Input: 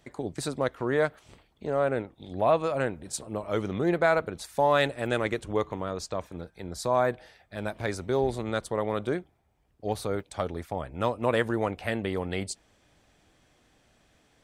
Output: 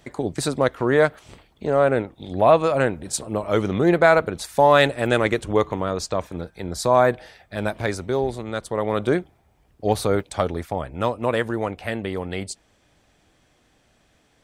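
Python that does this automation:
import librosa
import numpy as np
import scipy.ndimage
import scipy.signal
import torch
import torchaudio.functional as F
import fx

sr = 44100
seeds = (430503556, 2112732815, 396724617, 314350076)

y = fx.gain(x, sr, db=fx.line((7.67, 8.0), (8.47, 0.5), (9.17, 9.5), (10.17, 9.5), (11.41, 2.5)))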